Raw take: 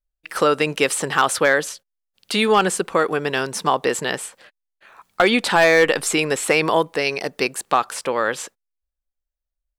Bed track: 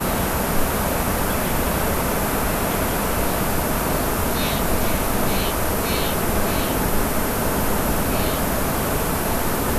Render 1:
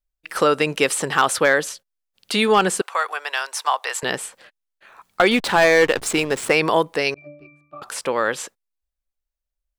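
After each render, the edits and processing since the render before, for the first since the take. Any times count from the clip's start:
0:02.81–0:04.03: high-pass filter 730 Hz 24 dB per octave
0:05.31–0:06.50: slack as between gear wheels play −22.5 dBFS
0:07.14–0:07.82: resonances in every octave D, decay 0.62 s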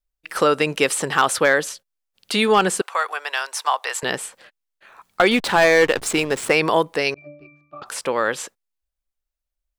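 0:07.13–0:07.86: Butterworth low-pass 6,200 Hz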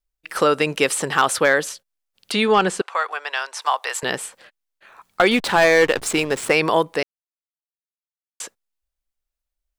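0:02.32–0:03.62: high-frequency loss of the air 57 metres
0:07.03–0:08.40: silence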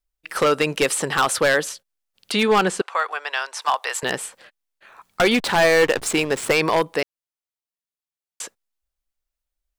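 wave folding −9.5 dBFS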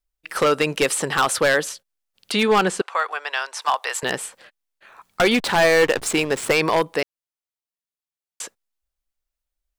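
no processing that can be heard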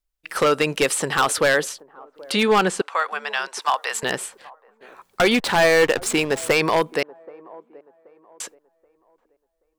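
delay with a band-pass on its return 779 ms, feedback 31%, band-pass 530 Hz, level −21 dB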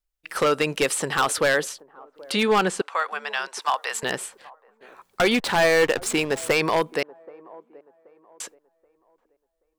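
level −2.5 dB

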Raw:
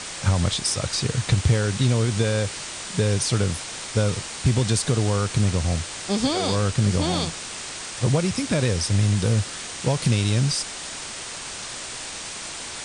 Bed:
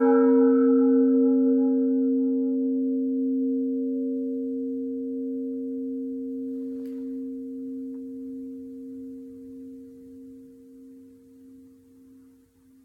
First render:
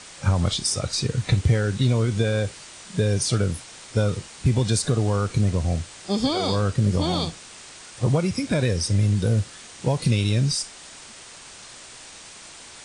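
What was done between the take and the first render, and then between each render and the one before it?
noise reduction from a noise print 9 dB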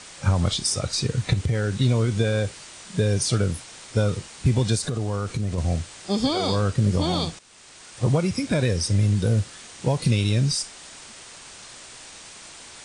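0:01.33–0:01.77: downward compressor, threshold −19 dBFS
0:04.75–0:05.58: downward compressor, threshold −22 dBFS
0:07.39–0:08.04: fade in, from −13 dB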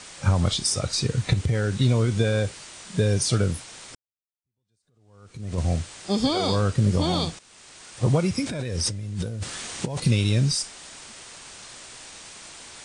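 0:03.95–0:05.57: fade in exponential
0:08.46–0:10.00: compressor whose output falls as the input rises −29 dBFS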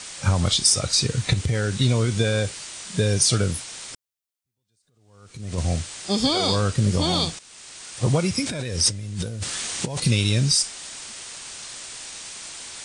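high-shelf EQ 2,200 Hz +7.5 dB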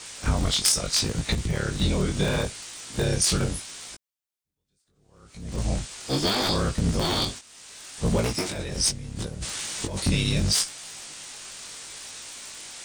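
sub-harmonics by changed cycles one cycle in 3, inverted
chorus effect 0.74 Hz, delay 17.5 ms, depth 4.1 ms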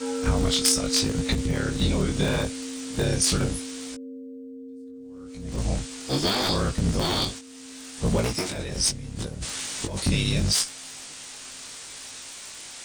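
mix in bed −11 dB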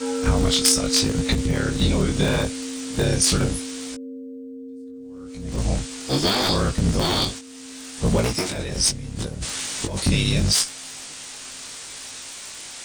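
level +3.5 dB

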